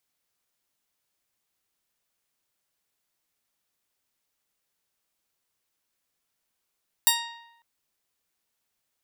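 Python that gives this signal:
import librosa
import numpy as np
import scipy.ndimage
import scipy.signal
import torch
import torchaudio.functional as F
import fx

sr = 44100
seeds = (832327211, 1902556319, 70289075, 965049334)

y = fx.pluck(sr, length_s=0.55, note=82, decay_s=0.89, pick=0.42, brightness='bright')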